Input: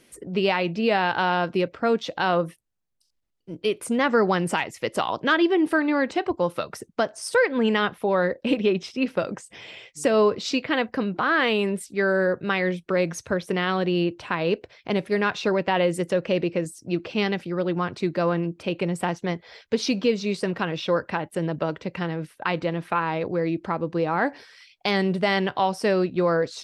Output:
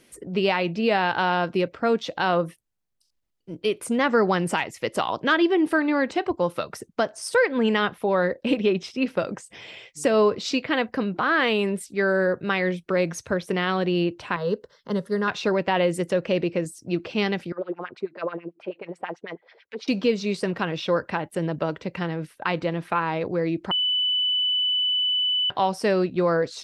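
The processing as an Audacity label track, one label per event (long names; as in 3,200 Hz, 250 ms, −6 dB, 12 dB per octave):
14.360000	15.280000	phaser with its sweep stopped centre 480 Hz, stages 8
17.520000	19.880000	auto-filter band-pass sine 9.2 Hz 360–2,600 Hz
23.710000	25.500000	beep over 2,990 Hz −20 dBFS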